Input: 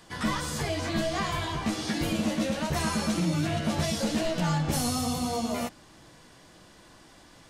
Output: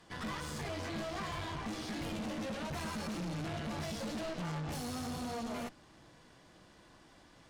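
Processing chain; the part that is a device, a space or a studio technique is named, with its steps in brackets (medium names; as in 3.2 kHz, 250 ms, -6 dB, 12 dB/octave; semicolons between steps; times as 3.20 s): tube preamp driven hard (valve stage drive 35 dB, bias 0.75; treble shelf 5.8 kHz -8 dB); trim -1.5 dB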